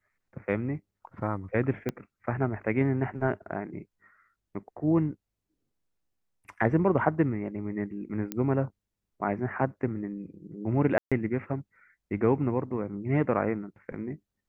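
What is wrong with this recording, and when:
0:01.89: click −17 dBFS
0:08.32: click −17 dBFS
0:10.98–0:11.12: drop-out 136 ms

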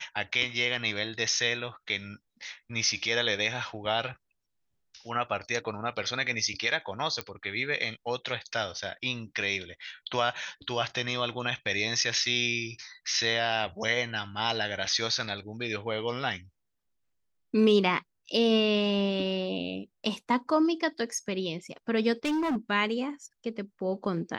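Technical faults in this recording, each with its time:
0:07.21: click −16 dBFS
0:22.25–0:22.57: clipping −25.5 dBFS

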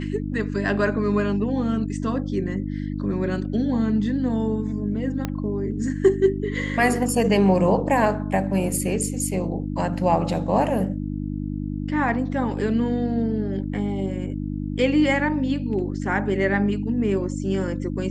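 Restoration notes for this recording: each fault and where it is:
mains hum 50 Hz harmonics 6 −28 dBFS
0:05.25: click −11 dBFS

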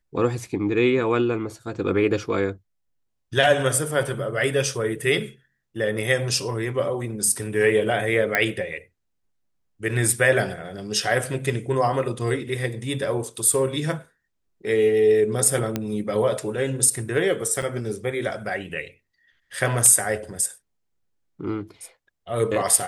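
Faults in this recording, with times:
0:08.35: click −6 dBFS
0:15.76: click −10 dBFS
0:17.62–0:17.63: drop-out 5.5 ms

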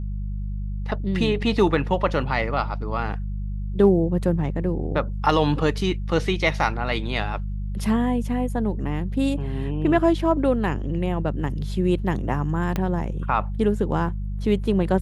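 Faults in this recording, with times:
mains hum 50 Hz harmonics 4 −28 dBFS
0:12.76: click −11 dBFS

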